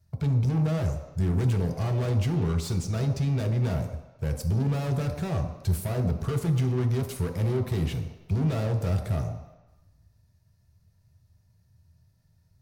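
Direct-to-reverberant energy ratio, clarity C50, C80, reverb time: 2.5 dB, 7.5 dB, 9.0 dB, 1.0 s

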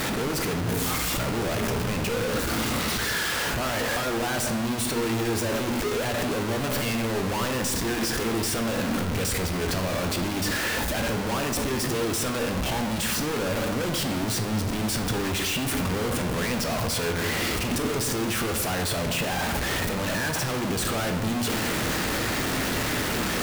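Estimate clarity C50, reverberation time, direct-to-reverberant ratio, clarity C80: 7.5 dB, 1.2 s, 4.5 dB, 9.5 dB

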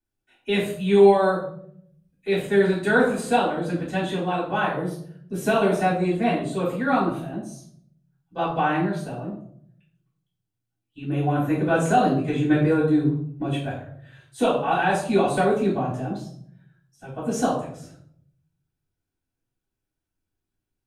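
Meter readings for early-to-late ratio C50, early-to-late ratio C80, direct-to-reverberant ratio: 5.0 dB, 9.0 dB, −9.0 dB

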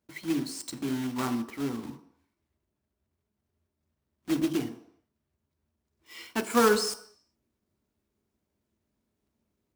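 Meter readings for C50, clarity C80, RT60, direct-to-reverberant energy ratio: 13.5 dB, 15.5 dB, non-exponential decay, 7.0 dB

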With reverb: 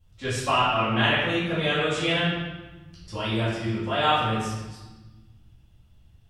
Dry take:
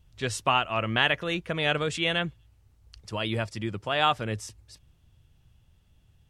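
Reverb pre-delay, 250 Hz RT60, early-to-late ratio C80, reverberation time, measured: 4 ms, 1.8 s, 2.5 dB, 1.2 s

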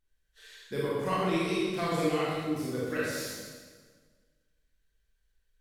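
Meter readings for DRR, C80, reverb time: −7.5 dB, 0.0 dB, 1.6 s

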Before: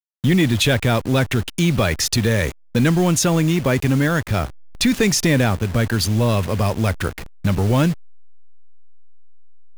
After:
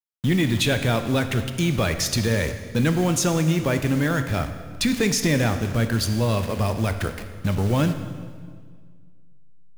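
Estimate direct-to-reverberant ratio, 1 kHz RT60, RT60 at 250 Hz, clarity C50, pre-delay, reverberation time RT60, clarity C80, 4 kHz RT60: 8.0 dB, 1.7 s, 2.1 s, 9.5 dB, 13 ms, 1.8 s, 10.5 dB, 1.6 s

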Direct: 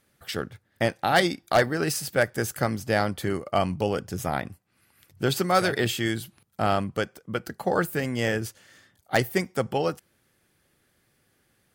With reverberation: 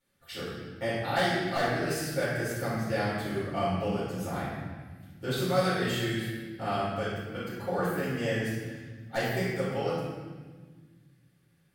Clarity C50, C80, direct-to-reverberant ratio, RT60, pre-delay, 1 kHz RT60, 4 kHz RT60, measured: −1.5 dB, 1.0 dB, −11.5 dB, 1.5 s, 6 ms, 1.4 s, 1.2 s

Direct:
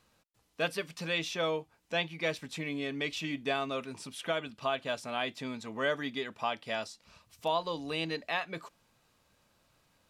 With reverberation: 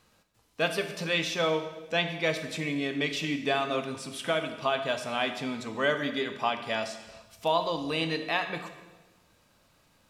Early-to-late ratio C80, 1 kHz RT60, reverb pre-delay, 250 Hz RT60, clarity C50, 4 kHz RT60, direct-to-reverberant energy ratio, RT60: 10.5 dB, 1.1 s, 12 ms, 1.5 s, 9.0 dB, 1.1 s, 7.0 dB, 1.2 s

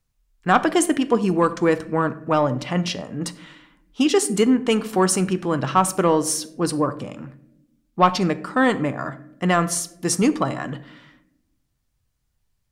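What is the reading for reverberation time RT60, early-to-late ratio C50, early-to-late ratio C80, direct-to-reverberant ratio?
non-exponential decay, 16.0 dB, 19.0 dB, 11.0 dB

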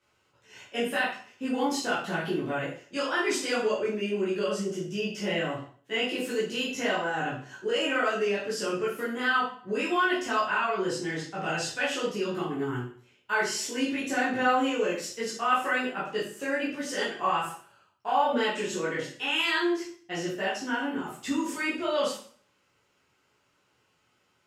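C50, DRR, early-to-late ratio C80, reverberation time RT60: 4.0 dB, −9.5 dB, 8.5 dB, 0.50 s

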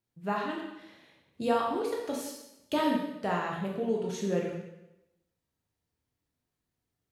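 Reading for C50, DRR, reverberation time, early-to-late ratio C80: 3.0 dB, −2.0 dB, 0.90 s, 5.5 dB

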